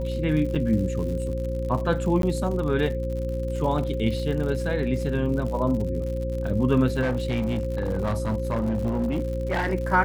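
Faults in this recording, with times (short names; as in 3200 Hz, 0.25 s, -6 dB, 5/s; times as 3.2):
crackle 88/s -32 dBFS
hum 60 Hz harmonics 6 -29 dBFS
tone 530 Hz -30 dBFS
0.55–0.56 gap 5.3 ms
2.22–2.23 gap 12 ms
7.01–9.74 clipped -20.5 dBFS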